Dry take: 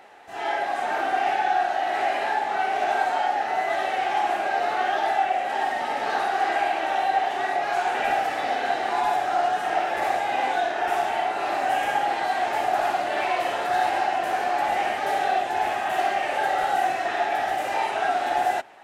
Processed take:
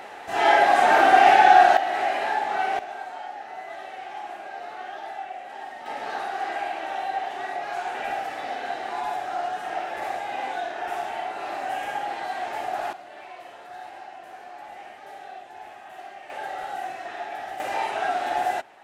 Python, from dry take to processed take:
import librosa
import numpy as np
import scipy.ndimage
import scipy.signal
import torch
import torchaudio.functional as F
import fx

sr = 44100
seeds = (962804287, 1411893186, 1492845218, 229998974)

y = fx.gain(x, sr, db=fx.steps((0.0, 9.0), (1.77, -0.5), (2.79, -12.5), (5.86, -6.0), (12.93, -17.5), (16.3, -9.5), (17.6, -2.0)))